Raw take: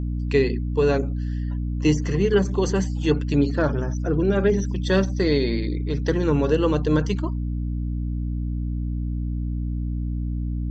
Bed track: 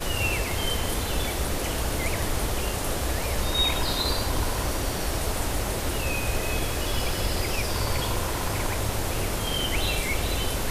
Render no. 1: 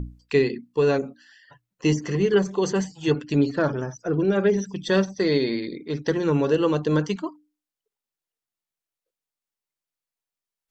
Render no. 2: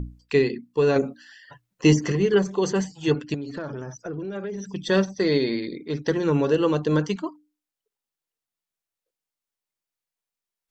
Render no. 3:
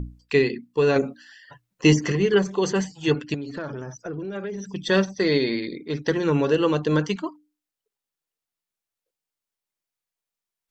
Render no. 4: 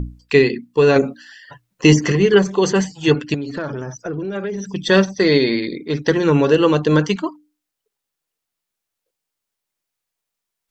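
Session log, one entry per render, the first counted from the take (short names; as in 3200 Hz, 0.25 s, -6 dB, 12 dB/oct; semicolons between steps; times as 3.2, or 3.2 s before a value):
notches 60/120/180/240/300 Hz
0.96–2.12 gain +4.5 dB; 3.34–4.65 compressor, threshold -29 dBFS
dynamic EQ 2400 Hz, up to +4 dB, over -43 dBFS, Q 0.75
gain +6.5 dB; limiter -1 dBFS, peak gain reduction 2.5 dB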